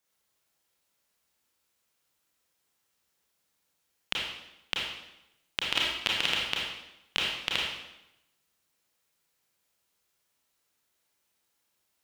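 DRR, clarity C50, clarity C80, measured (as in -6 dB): -3.5 dB, 0.5 dB, 3.5 dB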